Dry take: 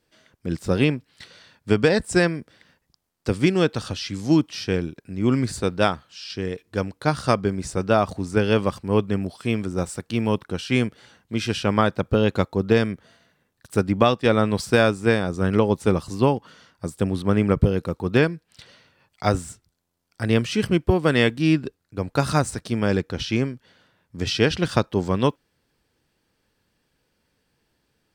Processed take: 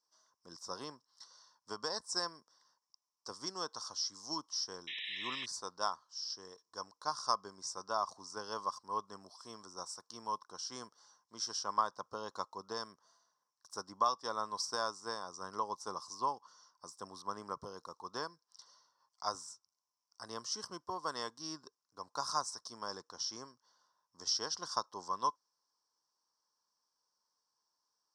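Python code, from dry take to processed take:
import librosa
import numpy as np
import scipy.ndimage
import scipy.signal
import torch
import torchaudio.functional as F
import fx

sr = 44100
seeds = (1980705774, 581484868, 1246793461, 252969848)

y = fx.double_bandpass(x, sr, hz=2400.0, octaves=2.4)
y = fx.spec_paint(y, sr, seeds[0], shape='noise', start_s=4.87, length_s=0.59, low_hz=1700.0, high_hz=4000.0, level_db=-42.0)
y = fx.high_shelf(y, sr, hz=4000.0, db=7.0)
y = y * 10.0 ** (-2.5 / 20.0)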